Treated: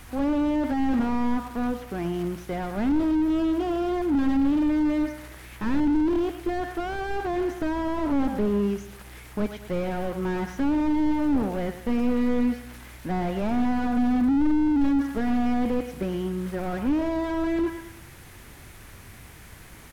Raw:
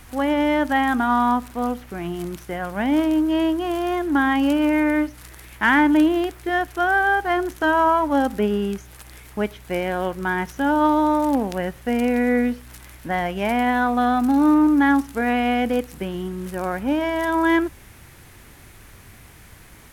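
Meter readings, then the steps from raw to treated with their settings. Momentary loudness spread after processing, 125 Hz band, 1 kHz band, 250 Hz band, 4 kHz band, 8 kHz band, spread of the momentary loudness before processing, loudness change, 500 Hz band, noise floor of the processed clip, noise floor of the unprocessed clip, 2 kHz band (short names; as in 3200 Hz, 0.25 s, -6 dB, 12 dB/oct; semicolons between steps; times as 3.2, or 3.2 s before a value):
9 LU, 0.0 dB, -11.0 dB, -2.5 dB, -9.5 dB, n/a, 12 LU, -5.0 dB, -5.5 dB, -46 dBFS, -46 dBFS, -14.0 dB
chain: feedback echo 0.108 s, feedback 43%, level -16 dB; slew limiter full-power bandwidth 29 Hz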